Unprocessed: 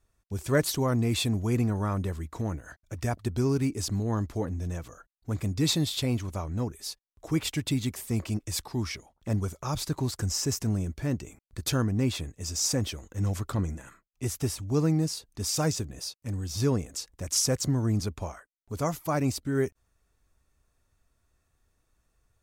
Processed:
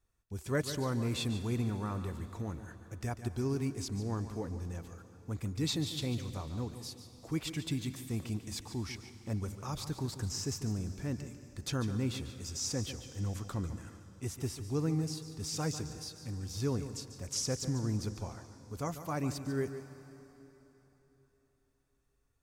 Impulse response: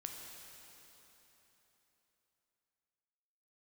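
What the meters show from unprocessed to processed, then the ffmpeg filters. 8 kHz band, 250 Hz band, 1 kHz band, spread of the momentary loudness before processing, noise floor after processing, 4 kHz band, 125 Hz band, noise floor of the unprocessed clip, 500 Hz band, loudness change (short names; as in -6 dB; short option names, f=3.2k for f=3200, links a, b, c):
-8.5 dB, -7.0 dB, -7.0 dB, 10 LU, -74 dBFS, -7.5 dB, -7.0 dB, -75 dBFS, -7.5 dB, -7.5 dB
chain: -filter_complex "[0:a]bandreject=f=620:w=12,acrossover=split=8100[a][b];[b]acompressor=threshold=-43dB:ratio=4:attack=1:release=60[c];[a][c]amix=inputs=2:normalize=0,asplit=2[d][e];[1:a]atrim=start_sample=2205,adelay=145[f];[e][f]afir=irnorm=-1:irlink=0,volume=-7dB[g];[d][g]amix=inputs=2:normalize=0,volume=-7.5dB"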